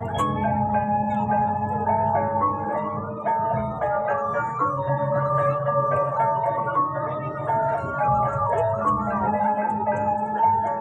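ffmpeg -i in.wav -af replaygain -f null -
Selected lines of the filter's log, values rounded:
track_gain = +5.5 dB
track_peak = 0.245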